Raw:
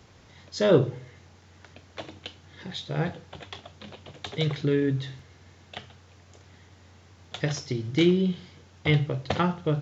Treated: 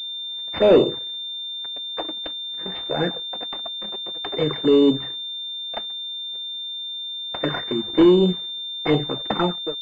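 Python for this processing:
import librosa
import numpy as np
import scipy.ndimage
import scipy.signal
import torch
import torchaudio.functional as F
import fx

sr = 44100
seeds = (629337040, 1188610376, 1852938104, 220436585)

y = fx.fade_out_tail(x, sr, length_s=0.52)
y = scipy.signal.sosfilt(scipy.signal.butter(4, 230.0, 'highpass', fs=sr, output='sos'), y)
y = fx.leveller(y, sr, passes=3)
y = fx.env_flanger(y, sr, rest_ms=8.2, full_db=-14.5)
y = fx.pwm(y, sr, carrier_hz=3600.0)
y = F.gain(torch.from_numpy(y), 2.0).numpy()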